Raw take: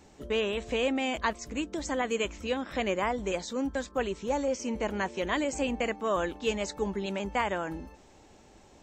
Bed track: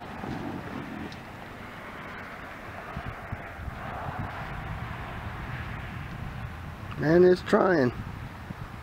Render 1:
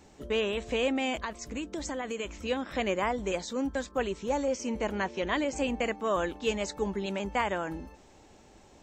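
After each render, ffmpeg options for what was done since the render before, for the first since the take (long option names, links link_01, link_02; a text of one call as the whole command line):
ffmpeg -i in.wav -filter_complex "[0:a]asettb=1/sr,asplit=3[link_01][link_02][link_03];[link_01]atrim=end=1.154[link_04];[link_02]atrim=start=1.15:end=2.33,asetpts=PTS-STARTPTS,afade=type=in:duration=0.004:curve=qsin,afade=type=out:start_time=1.176:duration=0.004:curve=qsin,acompressor=threshold=-30dB:ratio=6:attack=3.2:release=140:knee=1:detection=peak[link_05];[link_03]atrim=start=2.326[link_06];[link_04][link_05]acrossfade=duration=0.004:curve1=hsin:curve2=qsin[link_07];[link_07][link_06]acrossfade=duration=0.004:curve1=qsin:curve2=hsin,asettb=1/sr,asplit=3[link_08][link_09][link_10];[link_08]atrim=end=4.954[link_11];[link_09]atrim=start=4.95:end=5.56,asetpts=PTS-STARTPTS,afade=type=in:duration=0.004:curve=qsin,afade=type=out:start_time=0.606:duration=0.004:curve=qsin,lowpass=frequency=6400:width=0.5412,lowpass=frequency=6400:width=1.3066[link_12];[link_10]atrim=start=5.556[link_13];[link_11][link_12]acrossfade=duration=0.004:curve1=hsin:curve2=qsin[link_14];[link_14][link_13]acrossfade=duration=0.004:curve1=qsin:curve2=hsin" out.wav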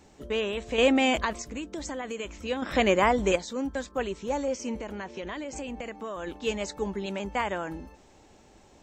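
ffmpeg -i in.wav -filter_complex "[0:a]asettb=1/sr,asplit=3[link_01][link_02][link_03];[link_01]atrim=end=0.784[link_04];[link_02]atrim=start=0.78:end=1.42,asetpts=PTS-STARTPTS,afade=type=in:duration=0.004:curve=qsin,afade=type=out:start_time=0.636:duration=0.004:curve=qsin,acontrast=85[link_05];[link_03]atrim=start=1.416[link_06];[link_04][link_05]acrossfade=duration=0.004:curve1=hsin:curve2=qsin[link_07];[link_07][link_06]acrossfade=duration=0.004:curve1=qsin:curve2=hsin,asettb=1/sr,asplit=3[link_08][link_09][link_10];[link_08]atrim=end=2.624[link_11];[link_09]atrim=start=2.62:end=3.36,asetpts=PTS-STARTPTS,afade=type=in:duration=0.004:curve=qsin,afade=type=out:start_time=0.736:duration=0.004:curve=qsin,acontrast=89[link_12];[link_10]atrim=start=3.356[link_13];[link_11][link_12]acrossfade=duration=0.004:curve1=hsin:curve2=qsin[link_14];[link_14][link_13]acrossfade=duration=0.004:curve1=qsin:curve2=hsin,asplit=3[link_15][link_16][link_17];[link_15]afade=type=out:start_time=4.79:duration=0.02[link_18];[link_16]acompressor=threshold=-32dB:ratio=6:attack=3.2:release=140:knee=1:detection=peak,afade=type=in:start_time=4.79:duration=0.02,afade=type=out:start_time=6.26:duration=0.02[link_19];[link_17]afade=type=in:start_time=6.26:duration=0.02[link_20];[link_18][link_19][link_20]amix=inputs=3:normalize=0" out.wav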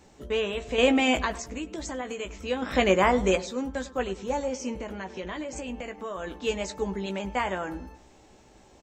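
ffmpeg -i in.wav -filter_complex "[0:a]asplit=2[link_01][link_02];[link_02]adelay=16,volume=-7.5dB[link_03];[link_01][link_03]amix=inputs=2:normalize=0,asplit=2[link_04][link_05];[link_05]adelay=100,lowpass=frequency=1900:poles=1,volume=-16dB,asplit=2[link_06][link_07];[link_07]adelay=100,lowpass=frequency=1900:poles=1,volume=0.39,asplit=2[link_08][link_09];[link_09]adelay=100,lowpass=frequency=1900:poles=1,volume=0.39[link_10];[link_04][link_06][link_08][link_10]amix=inputs=4:normalize=0" out.wav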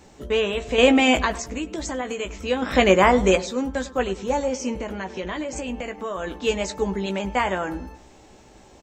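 ffmpeg -i in.wav -af "volume=5.5dB" out.wav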